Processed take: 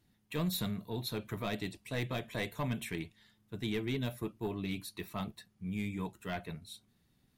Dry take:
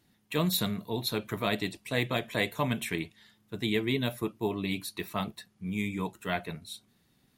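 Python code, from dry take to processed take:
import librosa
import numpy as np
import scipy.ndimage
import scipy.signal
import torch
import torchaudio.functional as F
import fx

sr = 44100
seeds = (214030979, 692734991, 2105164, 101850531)

y = 10.0 ** (-21.0 / 20.0) * np.tanh(x / 10.0 ** (-21.0 / 20.0))
y = fx.low_shelf(y, sr, hz=120.0, db=10.0)
y = y * librosa.db_to_amplitude(-6.5)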